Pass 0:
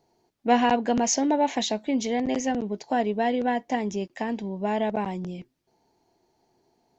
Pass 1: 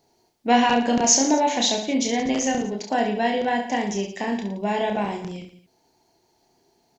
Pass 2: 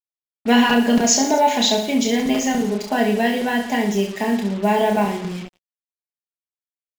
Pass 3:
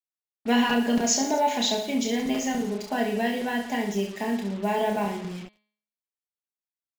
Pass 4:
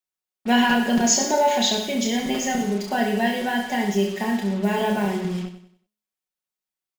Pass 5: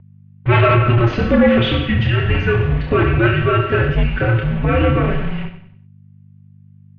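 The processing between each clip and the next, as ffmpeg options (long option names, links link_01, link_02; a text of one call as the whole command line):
ffmpeg -i in.wav -filter_complex "[0:a]highshelf=frequency=2300:gain=8,asplit=2[link_01][link_02];[link_02]aecho=0:1:30|67.5|114.4|173|246.2:0.631|0.398|0.251|0.158|0.1[link_03];[link_01][link_03]amix=inputs=2:normalize=0" out.wav
ffmpeg -i in.wav -af "equalizer=frequency=6000:width=5:gain=-6.5,aecho=1:1:4.8:0.66,acrusher=bits=5:mix=0:aa=0.5,volume=2.5dB" out.wav
ffmpeg -i in.wav -af "bandreject=frequency=210.3:width_type=h:width=4,bandreject=frequency=420.6:width_type=h:width=4,bandreject=frequency=630.9:width_type=h:width=4,bandreject=frequency=841.2:width_type=h:width=4,bandreject=frequency=1051.5:width_type=h:width=4,bandreject=frequency=1261.8:width_type=h:width=4,bandreject=frequency=1472.1:width_type=h:width=4,bandreject=frequency=1682.4:width_type=h:width=4,bandreject=frequency=1892.7:width_type=h:width=4,bandreject=frequency=2103:width_type=h:width=4,bandreject=frequency=2313.3:width_type=h:width=4,bandreject=frequency=2523.6:width_type=h:width=4,bandreject=frequency=2733.9:width_type=h:width=4,bandreject=frequency=2944.2:width_type=h:width=4,bandreject=frequency=3154.5:width_type=h:width=4,bandreject=frequency=3364.8:width_type=h:width=4,bandreject=frequency=3575.1:width_type=h:width=4,bandreject=frequency=3785.4:width_type=h:width=4,bandreject=frequency=3995.7:width_type=h:width=4,bandreject=frequency=4206:width_type=h:width=4,bandreject=frequency=4416.3:width_type=h:width=4,bandreject=frequency=4626.6:width_type=h:width=4,bandreject=frequency=4836.9:width_type=h:width=4,volume=-7dB" out.wav
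ffmpeg -i in.wav -filter_complex "[0:a]aecho=1:1:5.4:0.58,asplit=2[link_01][link_02];[link_02]aecho=0:1:95|190|285|380:0.266|0.0984|0.0364|0.0135[link_03];[link_01][link_03]amix=inputs=2:normalize=0,volume=3dB" out.wav
ffmpeg -i in.wav -af "aeval=exprs='val(0)+0.01*(sin(2*PI*50*n/s)+sin(2*PI*2*50*n/s)/2+sin(2*PI*3*50*n/s)/3+sin(2*PI*4*50*n/s)/4+sin(2*PI*5*50*n/s)/5)':channel_layout=same,aeval=exprs='0.531*sin(PI/2*2.82*val(0)/0.531)':channel_layout=same,highpass=frequency=220:width_type=q:width=0.5412,highpass=frequency=220:width_type=q:width=1.307,lowpass=frequency=3200:width_type=q:width=0.5176,lowpass=frequency=3200:width_type=q:width=0.7071,lowpass=frequency=3200:width_type=q:width=1.932,afreqshift=-350,volume=-2dB" out.wav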